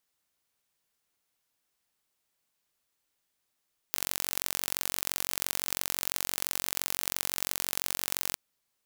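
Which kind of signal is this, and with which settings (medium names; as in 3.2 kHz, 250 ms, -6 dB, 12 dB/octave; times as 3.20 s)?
pulse train 45.9 per s, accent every 2, -1.5 dBFS 4.42 s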